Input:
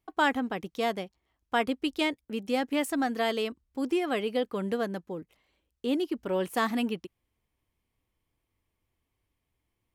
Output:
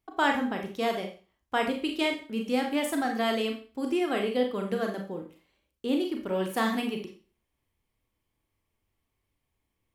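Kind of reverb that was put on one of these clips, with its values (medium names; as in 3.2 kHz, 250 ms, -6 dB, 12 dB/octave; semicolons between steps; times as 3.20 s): Schroeder reverb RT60 0.37 s, combs from 28 ms, DRR 2.5 dB; trim -1 dB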